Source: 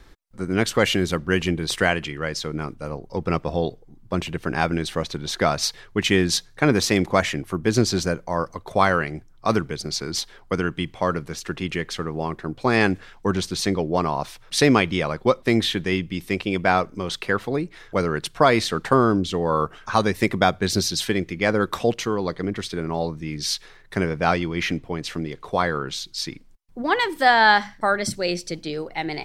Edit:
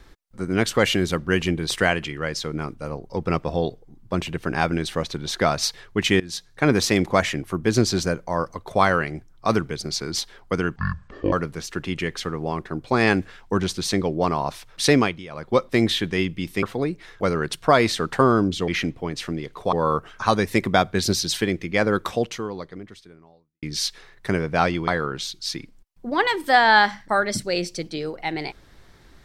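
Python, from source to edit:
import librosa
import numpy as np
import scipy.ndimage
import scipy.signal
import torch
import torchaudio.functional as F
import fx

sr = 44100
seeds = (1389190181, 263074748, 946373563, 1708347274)

y = fx.edit(x, sr, fx.fade_in_from(start_s=6.2, length_s=0.49, floor_db=-22.5),
    fx.speed_span(start_s=10.76, length_s=0.3, speed=0.53),
    fx.fade_down_up(start_s=14.66, length_s=0.66, db=-15.5, fade_s=0.3),
    fx.cut(start_s=16.36, length_s=0.99),
    fx.fade_out_span(start_s=21.66, length_s=1.64, curve='qua'),
    fx.move(start_s=24.55, length_s=1.05, to_s=19.4), tone=tone)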